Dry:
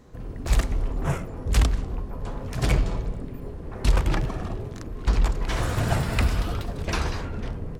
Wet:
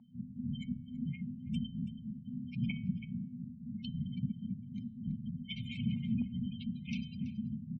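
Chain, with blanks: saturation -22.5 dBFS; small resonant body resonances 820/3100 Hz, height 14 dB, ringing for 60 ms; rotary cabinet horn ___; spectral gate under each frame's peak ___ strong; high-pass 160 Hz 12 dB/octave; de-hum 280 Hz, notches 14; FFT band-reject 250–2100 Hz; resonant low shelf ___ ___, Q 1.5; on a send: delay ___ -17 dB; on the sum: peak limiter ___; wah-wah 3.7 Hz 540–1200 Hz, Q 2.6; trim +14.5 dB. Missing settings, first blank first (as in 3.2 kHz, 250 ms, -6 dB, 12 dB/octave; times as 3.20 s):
1 Hz, -25 dB, 350 Hz, +7.5 dB, 329 ms, -20.5 dBFS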